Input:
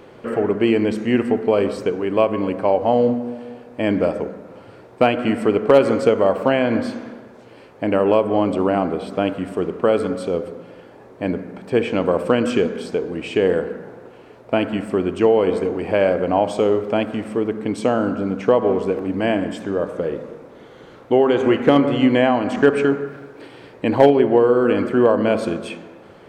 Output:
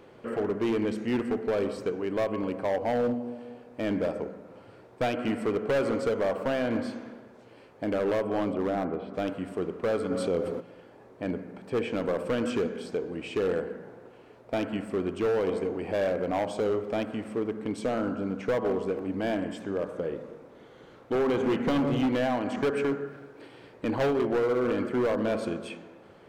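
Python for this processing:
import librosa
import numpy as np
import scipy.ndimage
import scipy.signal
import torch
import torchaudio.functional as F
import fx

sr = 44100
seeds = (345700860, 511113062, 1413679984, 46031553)

y = fx.lowpass(x, sr, hz=2300.0, slope=12, at=(8.52, 9.13), fade=0.02)
y = fx.peak_eq(y, sr, hz=170.0, db=10.5, octaves=0.81, at=(21.15, 22.06))
y = np.clip(y, -10.0 ** (-13.5 / 20.0), 10.0 ** (-13.5 / 20.0))
y = fx.env_flatten(y, sr, amount_pct=50, at=(10.1, 10.59), fade=0.02)
y = y * 10.0 ** (-8.5 / 20.0)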